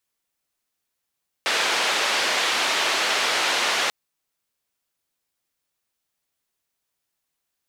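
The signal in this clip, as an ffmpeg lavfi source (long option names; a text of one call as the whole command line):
ffmpeg -f lavfi -i "anoisesrc=color=white:duration=2.44:sample_rate=44100:seed=1,highpass=frequency=450,lowpass=frequency=3700,volume=-9.7dB" out.wav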